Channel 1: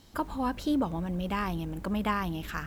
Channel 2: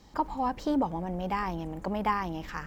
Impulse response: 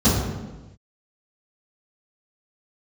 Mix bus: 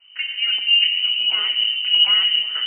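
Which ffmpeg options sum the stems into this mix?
-filter_complex "[0:a]equalizer=frequency=850:width=1.5:gain=-3,volume=2dB,asplit=2[link_01][link_02];[link_02]volume=-22dB[link_03];[1:a]volume=-6dB,asplit=2[link_04][link_05];[link_05]apad=whole_len=117736[link_06];[link_01][link_06]sidechaingate=range=-33dB:threshold=-42dB:ratio=16:detection=peak[link_07];[2:a]atrim=start_sample=2205[link_08];[link_03][link_08]afir=irnorm=-1:irlink=0[link_09];[link_07][link_04][link_09]amix=inputs=3:normalize=0,lowpass=frequency=2600:width_type=q:width=0.5098,lowpass=frequency=2600:width_type=q:width=0.6013,lowpass=frequency=2600:width_type=q:width=0.9,lowpass=frequency=2600:width_type=q:width=2.563,afreqshift=-3100"

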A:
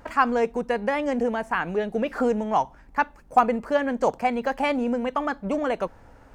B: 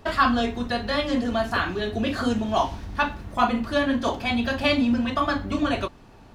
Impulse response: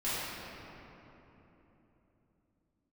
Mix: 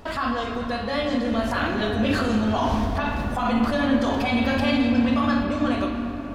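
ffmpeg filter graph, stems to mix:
-filter_complex "[0:a]acompressor=threshold=-28dB:ratio=6,volume=-1.5dB,asplit=2[link_01][link_02];[1:a]dynaudnorm=framelen=210:gausssize=13:maxgain=11.5dB,alimiter=limit=-11.5dB:level=0:latency=1:release=18,volume=1.5dB,asplit=2[link_03][link_04];[link_04]volume=-16dB[link_05];[link_02]apad=whole_len=279919[link_06];[link_03][link_06]sidechaincompress=threshold=-39dB:ratio=8:attack=10:release=164[link_07];[2:a]atrim=start_sample=2205[link_08];[link_05][link_08]afir=irnorm=-1:irlink=0[link_09];[link_01][link_07][link_09]amix=inputs=3:normalize=0"

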